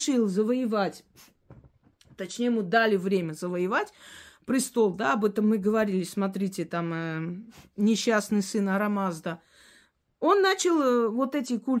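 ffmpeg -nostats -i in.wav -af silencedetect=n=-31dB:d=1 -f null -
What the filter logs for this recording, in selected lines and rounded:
silence_start: 0.90
silence_end: 2.20 | silence_duration: 1.31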